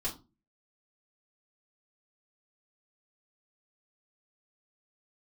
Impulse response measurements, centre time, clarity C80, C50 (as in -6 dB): 16 ms, 18.5 dB, 12.5 dB